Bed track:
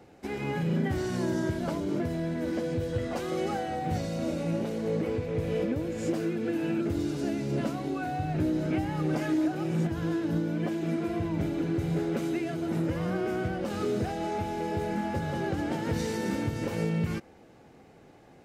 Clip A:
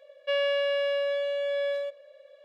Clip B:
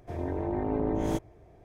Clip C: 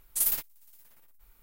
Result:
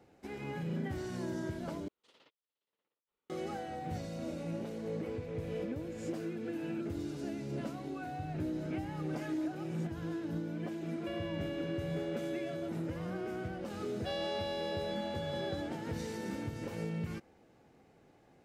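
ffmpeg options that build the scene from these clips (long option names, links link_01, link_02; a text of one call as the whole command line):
ffmpeg -i bed.wav -i cue0.wav -i cue1.wav -i cue2.wav -filter_complex "[1:a]asplit=2[link_01][link_02];[0:a]volume=-9dB[link_03];[3:a]highpass=250,equalizer=frequency=460:width_type=q:width=4:gain=5,equalizer=frequency=740:width_type=q:width=4:gain=-7,equalizer=frequency=1100:width_type=q:width=4:gain=-3,equalizer=frequency=1600:width_type=q:width=4:gain=-9,equalizer=frequency=2300:width_type=q:width=4:gain=-7,lowpass=frequency=3400:width=0.5412,lowpass=frequency=3400:width=1.3066[link_04];[link_01]acompressor=threshold=-28dB:ratio=6:attack=3.2:release=140:knee=1:detection=peak[link_05];[link_02]highshelf=frequency=3100:width_type=q:width=3:gain=7.5[link_06];[link_03]asplit=2[link_07][link_08];[link_07]atrim=end=1.884[link_09];[link_04]atrim=end=1.42,asetpts=PTS-STARTPTS,volume=-16dB[link_10];[link_08]atrim=start=3.296[link_11];[link_05]atrim=end=2.44,asetpts=PTS-STARTPTS,volume=-11dB,afade=type=in:duration=0.004:curve=hsin,afade=type=out:start_time=2.436:duration=0.004:curve=hsin,adelay=10790[link_12];[link_06]atrim=end=2.44,asetpts=PTS-STARTPTS,volume=-12dB,afade=type=in:duration=0.004:curve=hsin,afade=type=out:start_time=2.436:duration=0.004:curve=hsin,adelay=13780[link_13];[link_09][link_10]acrossfade=duration=0.004:curve1=hsin:curve2=hsin[link_14];[link_14][link_11]acrossfade=duration=0.004:curve1=hsin:curve2=hsin[link_15];[link_15][link_12][link_13]amix=inputs=3:normalize=0" out.wav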